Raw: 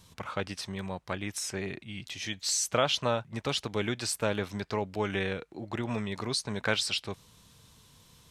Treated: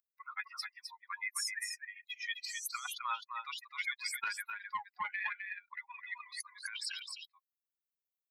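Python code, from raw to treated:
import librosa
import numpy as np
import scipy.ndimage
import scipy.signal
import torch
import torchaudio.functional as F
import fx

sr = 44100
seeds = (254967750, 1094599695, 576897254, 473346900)

y = fx.bin_expand(x, sr, power=3.0)
y = scipy.signal.sosfilt(scipy.signal.butter(8, 1100.0, 'highpass', fs=sr, output='sos'), y)
y = fx.over_compress(y, sr, threshold_db=-46.0, ratio=-1.0)
y = y + 10.0 ** (-5.5 / 20.0) * np.pad(y, (int(259 * sr / 1000.0), 0))[:len(y)]
y = fx.doppler_dist(y, sr, depth_ms=0.47, at=(4.14, 6.47))
y = F.gain(torch.from_numpy(y), 6.5).numpy()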